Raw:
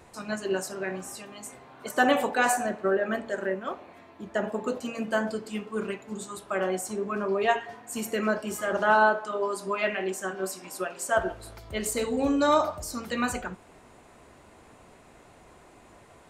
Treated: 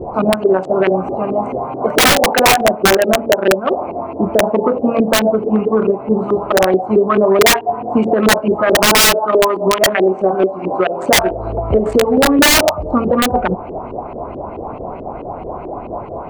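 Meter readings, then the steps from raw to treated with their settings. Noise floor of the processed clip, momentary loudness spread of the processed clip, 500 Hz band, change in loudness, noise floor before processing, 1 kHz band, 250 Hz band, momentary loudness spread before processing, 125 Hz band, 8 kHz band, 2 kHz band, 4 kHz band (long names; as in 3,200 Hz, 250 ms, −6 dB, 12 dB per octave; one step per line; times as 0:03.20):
−29 dBFS, 17 LU, +15.5 dB, +14.5 dB, −54 dBFS, +12.0 dB, +15.0 dB, 14 LU, +18.0 dB, +16.5 dB, +12.0 dB, +22.0 dB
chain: adaptive Wiener filter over 25 samples
auto-filter low-pass saw up 4.6 Hz 340–3,100 Hz
parametric band 770 Hz +6 dB 1.2 octaves
wrap-around overflow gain 13 dB
downward compressor 5 to 1, threshold −34 dBFS, peak gain reduction 15.5 dB
boost into a limiter +26 dB
level −2 dB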